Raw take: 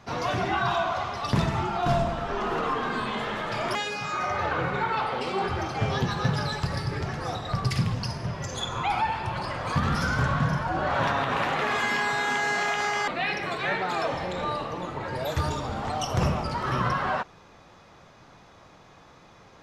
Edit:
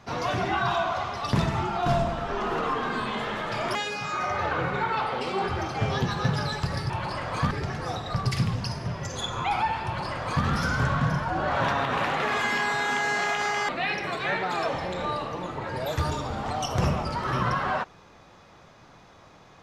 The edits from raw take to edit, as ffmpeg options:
ffmpeg -i in.wav -filter_complex "[0:a]asplit=3[link_01][link_02][link_03];[link_01]atrim=end=6.902[link_04];[link_02]atrim=start=9.228:end=9.842[link_05];[link_03]atrim=start=6.898[link_06];[link_04][link_05]acrossfade=duration=0.004:curve1=hsin:curve2=hsin[link_07];[link_07][link_06]acrossfade=duration=0.004:curve1=hsin:curve2=hsin" out.wav

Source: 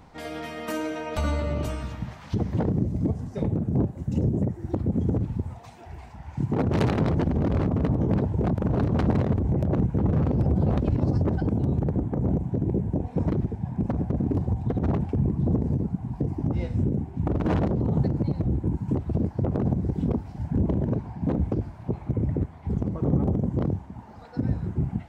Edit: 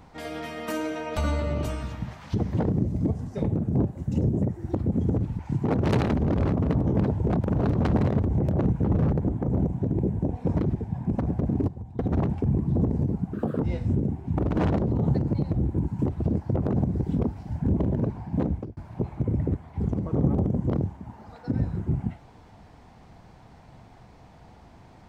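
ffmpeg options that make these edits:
ffmpeg -i in.wav -filter_complex "[0:a]asplit=9[link_01][link_02][link_03][link_04][link_05][link_06][link_07][link_08][link_09];[link_01]atrim=end=5.392[link_10];[link_02]atrim=start=6.268:end=7.012[link_11];[link_03]atrim=start=7.268:end=10.252[link_12];[link_04]atrim=start=11.818:end=14.392[link_13];[link_05]atrim=start=14.388:end=14.702,asetpts=PTS-STARTPTS,volume=-12dB[link_14];[link_06]atrim=start=14.698:end=16.044[link_15];[link_07]atrim=start=16.04:end=16.51,asetpts=PTS-STARTPTS,asetrate=71883,aresample=44100[link_16];[link_08]atrim=start=16.506:end=21.66,asetpts=PTS-STARTPTS,afade=type=out:start_time=4.814:duration=0.34[link_17];[link_09]atrim=start=21.66,asetpts=PTS-STARTPTS,afade=type=in:duration=0.004:curve=hsin[link_18];[link_10][link_11]acrossfade=duration=0.004:curve1=hsin:curve2=hsin[link_19];[link_19][link_12]acrossfade=duration=0.004:curve1=hsin:curve2=hsin[link_20];[link_20][link_13]acrossfade=duration=0.004:curve1=hsin:curve2=hsin[link_21];[link_21][link_14]acrossfade=duration=0.004:curve1=hsin:curve2=hsin[link_22];[link_22][link_15]acrossfade=duration=0.004:curve1=hsin:curve2=hsin[link_23];[link_23][link_16]acrossfade=duration=0.004:curve1=hsin:curve2=hsin[link_24];[link_17][link_18]concat=n=2:v=0:a=1[link_25];[link_24][link_25]acrossfade=duration=0.004:curve1=hsin:curve2=hsin" out.wav

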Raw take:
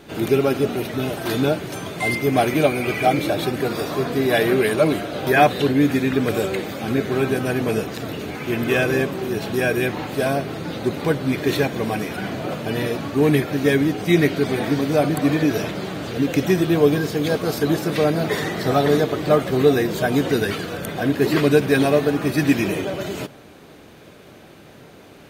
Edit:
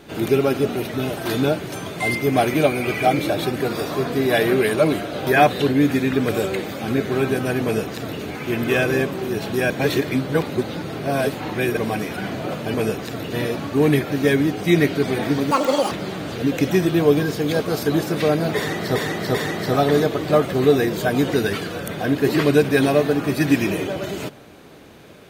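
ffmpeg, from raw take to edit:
ffmpeg -i in.wav -filter_complex "[0:a]asplit=9[link_01][link_02][link_03][link_04][link_05][link_06][link_07][link_08][link_09];[link_01]atrim=end=9.702[link_10];[link_02]atrim=start=9.698:end=11.772,asetpts=PTS-STARTPTS,areverse[link_11];[link_03]atrim=start=11.768:end=12.742[link_12];[link_04]atrim=start=7.628:end=8.222[link_13];[link_05]atrim=start=12.738:end=14.924[link_14];[link_06]atrim=start=14.92:end=15.67,asetpts=PTS-STARTPTS,asetrate=81585,aresample=44100,atrim=end_sample=17878,asetpts=PTS-STARTPTS[link_15];[link_07]atrim=start=15.666:end=18.712[link_16];[link_08]atrim=start=18.318:end=18.712[link_17];[link_09]atrim=start=18.318[link_18];[link_10][link_11]acrossfade=duration=0.004:curve1=hsin:curve2=hsin[link_19];[link_19][link_12]acrossfade=duration=0.004:curve1=hsin:curve2=hsin[link_20];[link_20][link_13]acrossfade=duration=0.004:curve1=hsin:curve2=hsin[link_21];[link_21][link_14]acrossfade=duration=0.004:curve1=hsin:curve2=hsin[link_22];[link_22][link_15]acrossfade=duration=0.004:curve1=hsin:curve2=hsin[link_23];[link_23][link_16]acrossfade=duration=0.004:curve1=hsin:curve2=hsin[link_24];[link_24][link_17]acrossfade=duration=0.004:curve1=hsin:curve2=hsin[link_25];[link_25][link_18]acrossfade=duration=0.004:curve1=hsin:curve2=hsin" out.wav

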